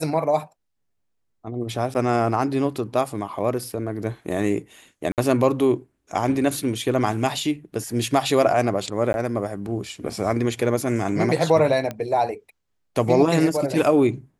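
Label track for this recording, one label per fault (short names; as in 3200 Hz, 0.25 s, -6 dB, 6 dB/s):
1.940000	1.950000	gap 9.7 ms
5.120000	5.180000	gap 58 ms
9.130000	9.140000	gap 11 ms
11.910000	11.910000	pop -15 dBFS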